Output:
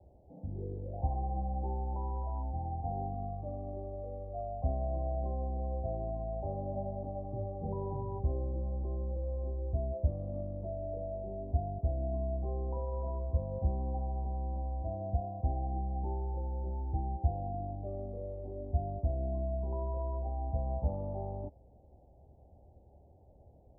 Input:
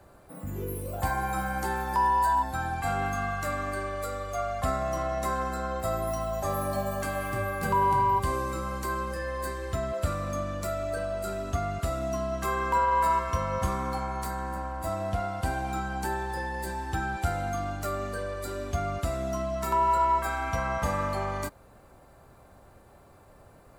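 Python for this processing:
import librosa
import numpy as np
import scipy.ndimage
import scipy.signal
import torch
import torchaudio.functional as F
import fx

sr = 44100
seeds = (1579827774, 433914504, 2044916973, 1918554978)

y = scipy.signal.sosfilt(scipy.signal.butter(12, 830.0, 'lowpass', fs=sr, output='sos'), x)
y = fx.peak_eq(y, sr, hz=69.0, db=11.0, octaves=0.75)
y = F.gain(torch.from_numpy(y), -7.5).numpy()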